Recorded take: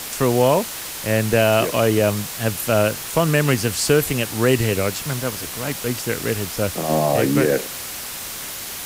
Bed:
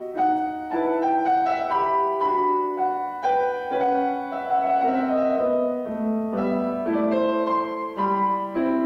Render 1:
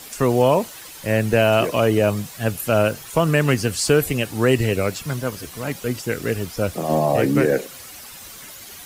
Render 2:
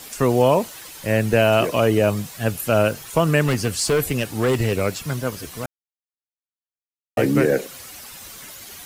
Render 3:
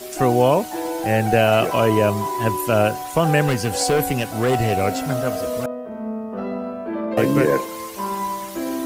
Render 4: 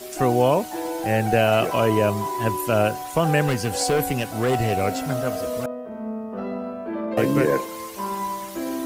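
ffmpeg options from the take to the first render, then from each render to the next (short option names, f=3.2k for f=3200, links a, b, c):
-af "afftdn=nr=11:nf=-31"
-filter_complex "[0:a]asettb=1/sr,asplit=3[a][b][c];[a]atrim=end=3.414[d];[b]atrim=start=3.41:end=4.81,asetpts=PTS-STARTPTS,afade=t=in:d=0.004:c=qsin,afade=t=out:st=1.396:d=0.004:c=qsin,asoftclip=type=hard:threshold=-14.5dB[e];[c]atrim=start=4.806[f];[d][e]acrossfade=d=0.004:c1=hsin:c2=qsin[g];[g][f]acrossfade=d=0.004:c1=qsin:c2=hsin,asplit=3[h][i][j];[h]atrim=end=5.66,asetpts=PTS-STARTPTS,afade=t=out:st=5.656:d=0.004:c=hsin[k];[i]atrim=start=5.66:end=7.17,asetpts=PTS-STARTPTS,volume=0[l];[j]atrim=start=7.17,asetpts=PTS-STARTPTS,afade=t=in:d=0.004:c=hsin[m];[k][l][m]concat=n=3:v=0:a=1"
-filter_complex "[1:a]volume=-3.5dB[a];[0:a][a]amix=inputs=2:normalize=0"
-af "volume=-2.5dB"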